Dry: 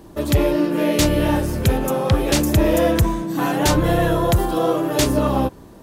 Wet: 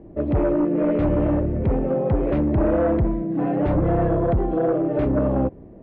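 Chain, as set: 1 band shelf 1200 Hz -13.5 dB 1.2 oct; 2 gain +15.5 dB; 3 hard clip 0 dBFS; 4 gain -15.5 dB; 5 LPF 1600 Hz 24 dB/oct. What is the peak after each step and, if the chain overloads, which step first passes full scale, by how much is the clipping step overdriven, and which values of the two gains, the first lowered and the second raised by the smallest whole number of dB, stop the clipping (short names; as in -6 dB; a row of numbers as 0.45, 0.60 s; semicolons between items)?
-6.5, +9.0, 0.0, -15.5, -14.0 dBFS; step 2, 9.0 dB; step 2 +6.5 dB, step 4 -6.5 dB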